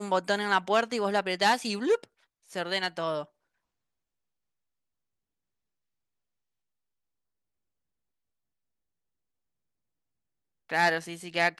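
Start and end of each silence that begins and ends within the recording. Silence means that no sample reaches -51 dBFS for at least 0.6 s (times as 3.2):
3.26–10.69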